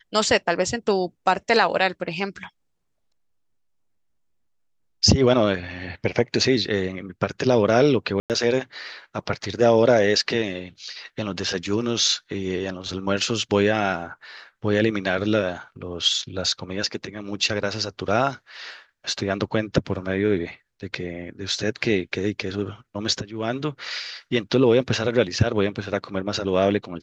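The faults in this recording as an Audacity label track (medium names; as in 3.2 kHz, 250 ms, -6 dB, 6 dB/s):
8.200000	8.300000	dropout 98 ms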